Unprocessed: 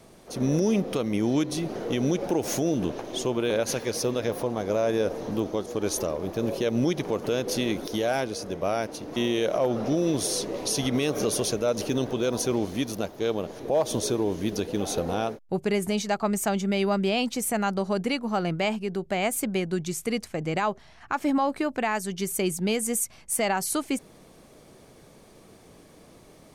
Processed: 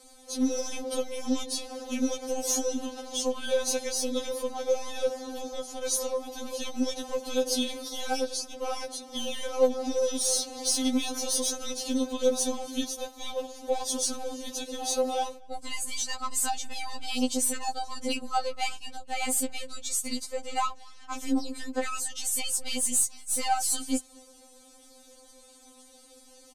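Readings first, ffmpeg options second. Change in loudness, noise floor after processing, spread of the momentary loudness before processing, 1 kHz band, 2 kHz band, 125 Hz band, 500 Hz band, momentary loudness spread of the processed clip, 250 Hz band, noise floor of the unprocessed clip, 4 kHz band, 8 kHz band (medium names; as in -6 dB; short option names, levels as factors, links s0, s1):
-2.5 dB, -54 dBFS, 5 LU, -2.5 dB, -6.0 dB, under -20 dB, -5.0 dB, 10 LU, -6.0 dB, -52 dBFS, +1.0 dB, +3.5 dB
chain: -filter_complex "[0:a]aresample=32000,aresample=44100,aeval=exprs='0.178*(cos(1*acos(clip(val(0)/0.178,-1,1)))-cos(1*PI/2))+0.00794*(cos(6*acos(clip(val(0)/0.178,-1,1)))-cos(6*PI/2))':c=same,acrossover=split=540|2000[s0][s1][s2];[s2]asoftclip=type=tanh:threshold=0.0447[s3];[s0][s1][s3]amix=inputs=3:normalize=0,equalizer=f=125:t=o:w=1:g=7,equalizer=f=250:t=o:w=1:g=-6,equalizer=f=2000:t=o:w=1:g=-6,equalizer=f=4000:t=o:w=1:g=5,equalizer=f=8000:t=o:w=1:g=10,asplit=2[s4][s5];[s5]adelay=233.2,volume=0.0447,highshelf=f=4000:g=-5.25[s6];[s4][s6]amix=inputs=2:normalize=0,afftfilt=real='re*3.46*eq(mod(b,12),0)':imag='im*3.46*eq(mod(b,12),0)':win_size=2048:overlap=0.75"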